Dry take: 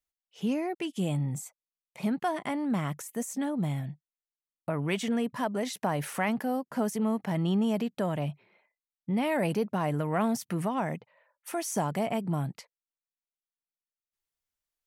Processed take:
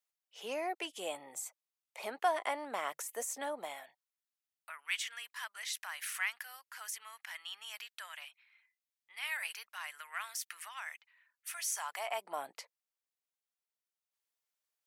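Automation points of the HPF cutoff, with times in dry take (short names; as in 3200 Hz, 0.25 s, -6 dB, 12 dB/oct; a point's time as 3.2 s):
HPF 24 dB/oct
3.56 s 500 Hz
4.73 s 1500 Hz
11.64 s 1500 Hz
12.55 s 430 Hz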